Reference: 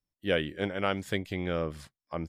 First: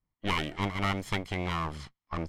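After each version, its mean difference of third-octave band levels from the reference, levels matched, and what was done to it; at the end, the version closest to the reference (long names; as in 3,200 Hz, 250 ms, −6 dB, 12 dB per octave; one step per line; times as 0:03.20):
7.0 dB: lower of the sound and its delayed copy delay 0.95 ms
in parallel at +3 dB: downward compressor 10 to 1, threshold −40 dBFS, peak gain reduction 14.5 dB
on the sum: low-pass that shuts in the quiet parts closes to 1,900 Hz, open at −27.5 dBFS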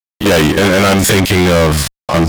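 11.0 dB: spectrum averaged block by block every 50 ms
high-shelf EQ 4,900 Hz +7.5 dB
fuzz pedal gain 44 dB, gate −54 dBFS
level +5 dB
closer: first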